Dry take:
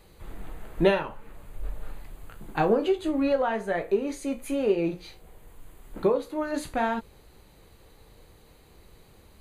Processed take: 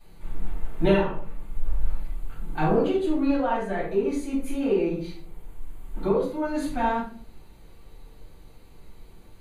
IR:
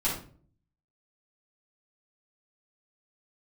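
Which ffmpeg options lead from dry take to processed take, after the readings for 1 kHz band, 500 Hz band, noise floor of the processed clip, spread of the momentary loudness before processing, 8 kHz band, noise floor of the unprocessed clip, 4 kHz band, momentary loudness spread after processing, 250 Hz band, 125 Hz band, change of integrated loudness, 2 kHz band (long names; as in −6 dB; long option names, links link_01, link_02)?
+2.0 dB, 0.0 dB, −49 dBFS, 19 LU, −2.0 dB, −55 dBFS, −1.5 dB, 16 LU, +3.0 dB, +5.5 dB, +0.5 dB, −1.0 dB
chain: -filter_complex "[1:a]atrim=start_sample=2205[link_01];[0:a][link_01]afir=irnorm=-1:irlink=0,volume=-8.5dB"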